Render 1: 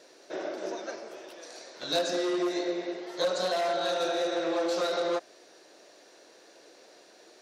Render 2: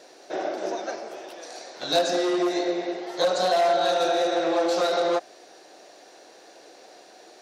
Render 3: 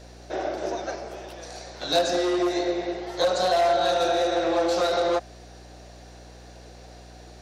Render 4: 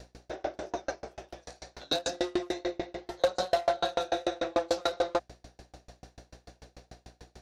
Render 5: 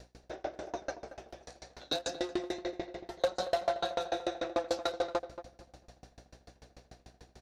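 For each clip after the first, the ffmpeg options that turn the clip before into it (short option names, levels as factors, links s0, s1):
-af "equalizer=f=760:w=5.3:g=8.5,volume=1.68"
-af "aeval=exprs='val(0)+0.00501*(sin(2*PI*60*n/s)+sin(2*PI*2*60*n/s)/2+sin(2*PI*3*60*n/s)/3+sin(2*PI*4*60*n/s)/4+sin(2*PI*5*60*n/s)/5)':c=same"
-af "aeval=exprs='val(0)*pow(10,-35*if(lt(mod(6.8*n/s,1),2*abs(6.8)/1000),1-mod(6.8*n/s,1)/(2*abs(6.8)/1000),(mod(6.8*n/s,1)-2*abs(6.8)/1000)/(1-2*abs(6.8)/1000))/20)':c=same,volume=1.19"
-filter_complex "[0:a]asplit=2[s0][s1];[s1]adelay=229,lowpass=f=1700:p=1,volume=0.251,asplit=2[s2][s3];[s3]adelay=229,lowpass=f=1700:p=1,volume=0.25,asplit=2[s4][s5];[s5]adelay=229,lowpass=f=1700:p=1,volume=0.25[s6];[s0][s2][s4][s6]amix=inputs=4:normalize=0,volume=0.631"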